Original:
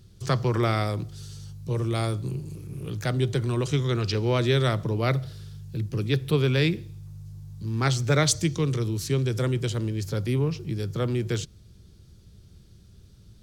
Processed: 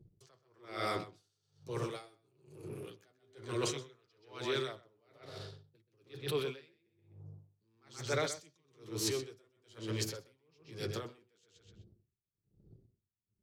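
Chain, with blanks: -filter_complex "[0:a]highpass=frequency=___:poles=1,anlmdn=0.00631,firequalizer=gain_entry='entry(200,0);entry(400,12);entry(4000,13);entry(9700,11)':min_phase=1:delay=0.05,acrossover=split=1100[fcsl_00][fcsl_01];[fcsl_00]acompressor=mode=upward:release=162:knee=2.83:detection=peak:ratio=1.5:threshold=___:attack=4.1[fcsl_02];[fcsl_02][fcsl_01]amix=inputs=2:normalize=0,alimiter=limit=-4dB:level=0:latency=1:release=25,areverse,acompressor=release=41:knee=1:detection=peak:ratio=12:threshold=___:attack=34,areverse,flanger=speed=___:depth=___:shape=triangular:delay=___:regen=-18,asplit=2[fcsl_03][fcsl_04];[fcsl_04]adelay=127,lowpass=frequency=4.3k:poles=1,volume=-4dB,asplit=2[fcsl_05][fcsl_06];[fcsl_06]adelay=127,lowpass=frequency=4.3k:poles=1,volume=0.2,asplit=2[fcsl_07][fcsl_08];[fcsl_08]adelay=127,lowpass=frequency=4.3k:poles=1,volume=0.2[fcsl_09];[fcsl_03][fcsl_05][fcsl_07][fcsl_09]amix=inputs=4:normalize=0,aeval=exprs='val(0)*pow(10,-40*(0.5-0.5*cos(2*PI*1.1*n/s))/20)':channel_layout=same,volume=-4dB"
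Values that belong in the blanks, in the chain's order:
160, -30dB, -29dB, 0.48, 4.8, 6.2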